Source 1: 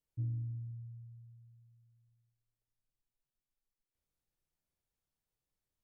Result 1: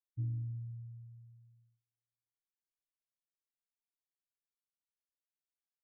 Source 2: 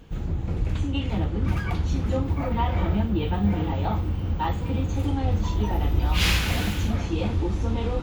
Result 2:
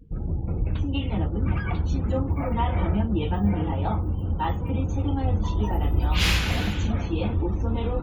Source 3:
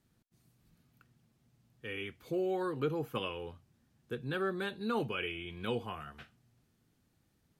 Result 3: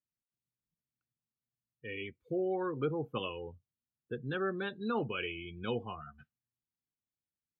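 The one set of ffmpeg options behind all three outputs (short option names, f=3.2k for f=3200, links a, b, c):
-af "afftdn=nr=30:nf=-43"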